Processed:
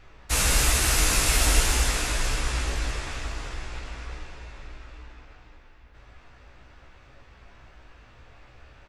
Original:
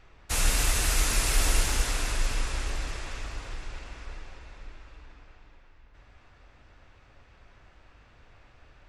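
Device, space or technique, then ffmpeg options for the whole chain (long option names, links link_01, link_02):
slapback doubling: -filter_complex "[0:a]asplit=3[link_01][link_02][link_03];[link_02]adelay=16,volume=-3.5dB[link_04];[link_03]adelay=85,volume=-10dB[link_05];[link_01][link_04][link_05]amix=inputs=3:normalize=0,volume=3dB"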